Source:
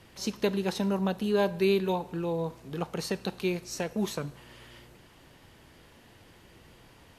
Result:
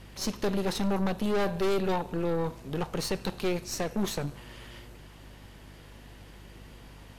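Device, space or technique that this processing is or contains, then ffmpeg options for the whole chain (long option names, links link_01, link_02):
valve amplifier with mains hum: -af "aeval=exprs='(tanh(35.5*val(0)+0.65)-tanh(0.65))/35.5':channel_layout=same,aeval=exprs='val(0)+0.00158*(sin(2*PI*50*n/s)+sin(2*PI*2*50*n/s)/2+sin(2*PI*3*50*n/s)/3+sin(2*PI*4*50*n/s)/4+sin(2*PI*5*50*n/s)/5)':channel_layout=same,volume=6.5dB"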